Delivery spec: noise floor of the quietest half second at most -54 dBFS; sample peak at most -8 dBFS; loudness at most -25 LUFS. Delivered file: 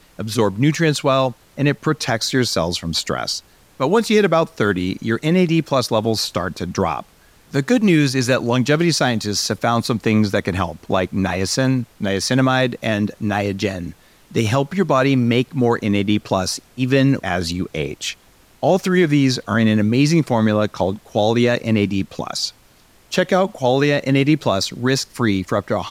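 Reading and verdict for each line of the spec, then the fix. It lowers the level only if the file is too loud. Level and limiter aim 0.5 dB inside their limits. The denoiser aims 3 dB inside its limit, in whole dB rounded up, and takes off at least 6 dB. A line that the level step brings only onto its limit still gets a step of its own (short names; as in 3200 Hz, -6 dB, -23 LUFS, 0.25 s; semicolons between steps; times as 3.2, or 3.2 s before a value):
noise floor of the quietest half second -52 dBFS: fail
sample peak -4.5 dBFS: fail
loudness -18.5 LUFS: fail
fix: gain -7 dB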